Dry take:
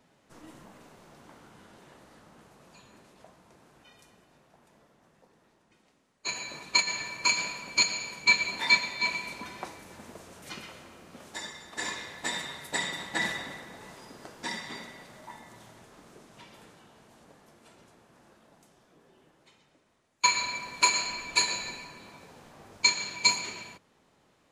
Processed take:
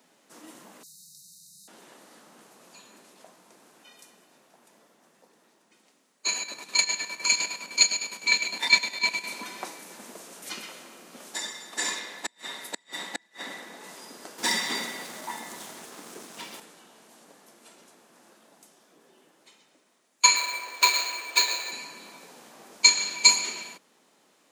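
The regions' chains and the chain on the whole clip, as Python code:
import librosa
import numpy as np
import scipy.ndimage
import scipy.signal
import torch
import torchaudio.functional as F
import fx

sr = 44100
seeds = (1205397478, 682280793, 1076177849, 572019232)

y = fx.chain(x, sr, fx.brickwall_bandstop(low_hz=190.0, high_hz=3700.0),
    fx.high_shelf(hz=3500.0, db=8.5), at=(0.83, 1.68))
y = fx.chain(y, sr, fx.dynamic_eq(hz=1200.0, q=5.1, threshold_db=-50.0, ratio=4.0, max_db=-5),
    fx.chopper(hz=9.8, depth_pct=60, duty_pct=55), at=(6.38, 9.29))
y = fx.chain(y, sr, fx.highpass(hz=160.0, slope=24),
    fx.high_shelf(hz=5500.0, db=-5.5),
    fx.gate_flip(shuts_db=-22.0, range_db=-37), at=(11.99, 13.84))
y = fx.chain(y, sr, fx.notch(hz=600.0, q=16.0),
    fx.leveller(passes=2), at=(14.38, 16.6))
y = fx.chain(y, sr, fx.highpass(hz=350.0, slope=24),
    fx.peak_eq(hz=11000.0, db=-13.0, octaves=0.32),
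    fx.resample_linear(factor=4), at=(20.36, 21.72))
y = scipy.signal.sosfilt(scipy.signal.butter(4, 200.0, 'highpass', fs=sr, output='sos'), y)
y = fx.high_shelf(y, sr, hz=4600.0, db=10.5)
y = y * 10.0 ** (1.5 / 20.0)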